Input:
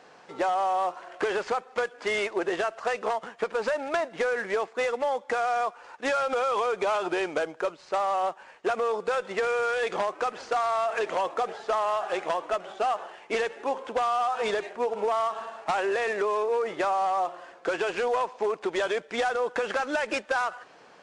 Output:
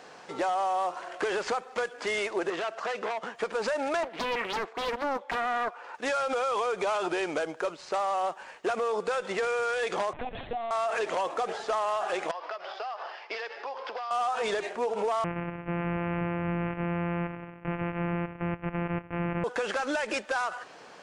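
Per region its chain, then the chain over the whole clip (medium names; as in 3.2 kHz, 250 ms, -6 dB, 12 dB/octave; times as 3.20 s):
2.50–3.35 s: high-pass 140 Hz + distance through air 58 m + transformer saturation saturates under 1.4 kHz
4.03–5.95 s: high-pass 190 Hz + tone controls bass -7 dB, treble -12 dB + loudspeaker Doppler distortion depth 0.97 ms
10.13–10.71 s: compression 10:1, threshold -31 dBFS + Butterworth band-stop 1.3 kHz, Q 2.5 + LPC vocoder at 8 kHz pitch kept
12.31–14.11 s: three-band isolator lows -23 dB, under 480 Hz, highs -18 dB, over 3.1 kHz + compression 16:1, threshold -36 dBFS + resonant low-pass 5 kHz, resonance Q 10
15.24–19.44 s: sorted samples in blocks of 256 samples + steep low-pass 2.7 kHz 72 dB/octave
whole clip: treble shelf 4.9 kHz +5 dB; peak limiter -25.5 dBFS; trim +3.5 dB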